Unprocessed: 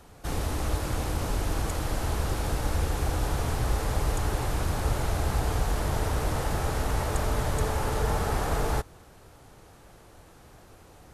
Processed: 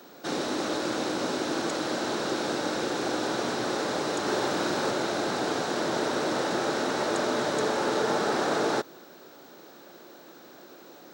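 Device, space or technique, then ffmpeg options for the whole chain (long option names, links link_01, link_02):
old television with a line whistle: -filter_complex "[0:a]highpass=frequency=190:width=0.5412,highpass=frequency=190:width=1.3066,equalizer=frequency=250:width_type=q:width=4:gain=4,equalizer=frequency=350:width_type=q:width=4:gain=8,equalizer=frequency=570:width_type=q:width=4:gain=5,equalizer=frequency=1500:width_type=q:width=4:gain=5,equalizer=frequency=3900:width_type=q:width=4:gain=8,equalizer=frequency=5500:width_type=q:width=4:gain=4,lowpass=frequency=7800:width=0.5412,lowpass=frequency=7800:width=1.3066,aeval=exprs='val(0)+0.00141*sin(2*PI*15734*n/s)':channel_layout=same,asettb=1/sr,asplit=3[link_01][link_02][link_03];[link_01]atrim=end=4.224[link_04];[link_02]atrim=start=4.22:end=4.91,asetpts=PTS-STARTPTS,afade=type=in:duration=0.004:curve=qsin,afade=type=out:start_time=0.686:duration=0.004:curve=qsin,asplit=2[link_05][link_06];[link_06]adelay=44,volume=-3.5dB[link_07];[link_05][link_07]amix=inputs=2:normalize=0,atrim=end_sample=30429[link_08];[link_03]atrim=start=4.906[link_09];[link_04][link_08]acrossfade=duration=0.004:curve1=hsin:curve2=qsin[link_10];[link_10][link_09]acrossfade=duration=0.004:curve1=qsin:curve2=hsin,volume=1.5dB"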